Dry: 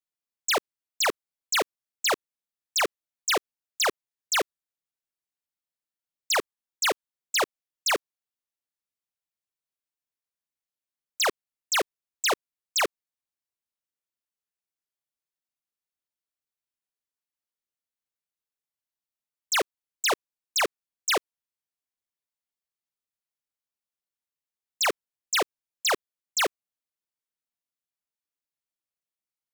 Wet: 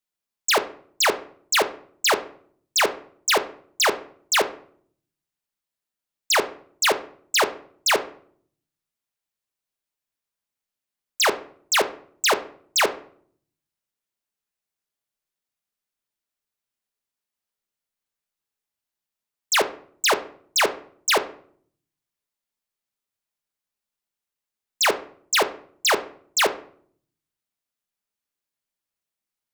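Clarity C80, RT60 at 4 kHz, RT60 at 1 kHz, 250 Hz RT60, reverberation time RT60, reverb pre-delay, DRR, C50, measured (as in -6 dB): 19.0 dB, 0.35 s, 0.50 s, 0.80 s, 0.55 s, 5 ms, 7.5 dB, 14.5 dB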